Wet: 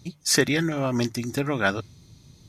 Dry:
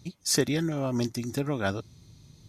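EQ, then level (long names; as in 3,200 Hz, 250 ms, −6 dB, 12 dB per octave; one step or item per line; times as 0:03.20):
mains-hum notches 50/100/150 Hz
dynamic equaliser 1,900 Hz, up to +8 dB, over −47 dBFS, Q 0.88
+3.0 dB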